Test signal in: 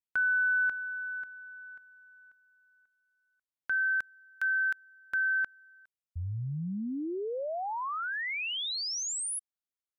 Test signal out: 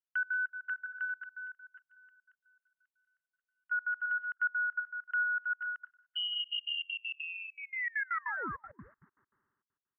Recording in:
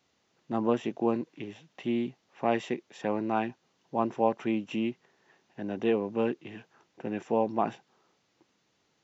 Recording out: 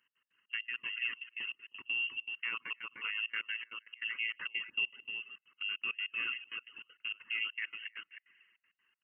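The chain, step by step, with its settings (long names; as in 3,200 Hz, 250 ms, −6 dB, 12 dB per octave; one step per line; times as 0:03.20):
delay that plays each chunk backwards 123 ms, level −10.5 dB
dynamic equaliser 1,800 Hz, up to +5 dB, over −42 dBFS, Q 0.94
phaser with its sweep stopped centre 2,300 Hz, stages 6
spring reverb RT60 1.7 s, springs 54 ms, chirp 60 ms, DRR 15 dB
brickwall limiter −26.5 dBFS
voice inversion scrambler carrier 3,000 Hz
high-pass filter 360 Hz 6 dB per octave
on a send: single-tap delay 313 ms −5 dB
on the sum: reverb reduction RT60 0.51 s
gate pattern "x.x.xx.x.x.xxx" 198 BPM −24 dB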